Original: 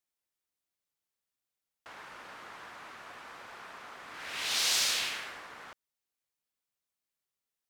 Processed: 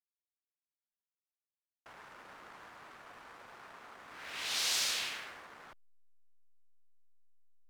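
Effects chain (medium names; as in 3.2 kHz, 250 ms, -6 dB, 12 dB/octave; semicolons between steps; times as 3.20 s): hysteresis with a dead band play -48 dBFS; trim -4 dB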